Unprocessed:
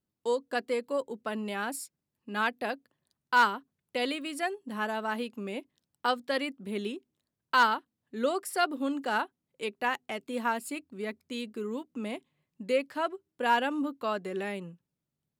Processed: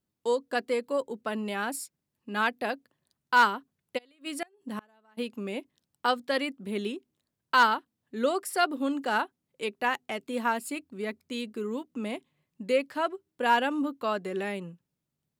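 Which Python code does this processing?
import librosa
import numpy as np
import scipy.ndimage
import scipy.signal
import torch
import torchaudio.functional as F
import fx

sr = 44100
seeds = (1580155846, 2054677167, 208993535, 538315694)

y = fx.gate_flip(x, sr, shuts_db=-24.0, range_db=-32, at=(3.97, 5.17), fade=0.02)
y = y * librosa.db_to_amplitude(2.0)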